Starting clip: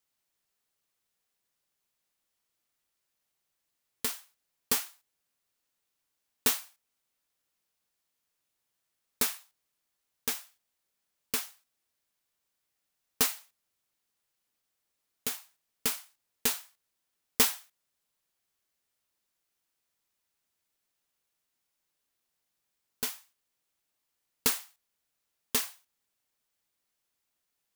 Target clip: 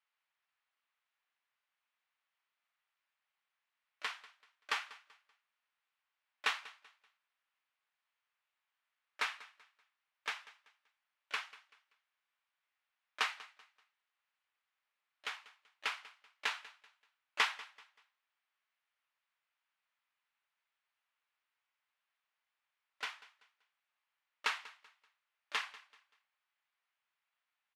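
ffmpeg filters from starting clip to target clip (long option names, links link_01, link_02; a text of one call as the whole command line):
ffmpeg -i in.wav -filter_complex "[0:a]asplit=2[link_01][link_02];[link_02]asetrate=58866,aresample=44100,atempo=0.749154,volume=-16dB[link_03];[link_01][link_03]amix=inputs=2:normalize=0,asuperpass=centerf=1600:order=4:qfactor=0.79,aecho=1:1:192|384|576:0.112|0.0359|0.0115,volume=2.5dB" out.wav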